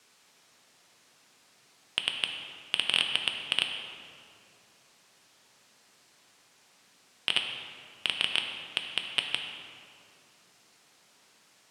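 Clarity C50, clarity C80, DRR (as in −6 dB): 4.5 dB, 5.5 dB, 3.0 dB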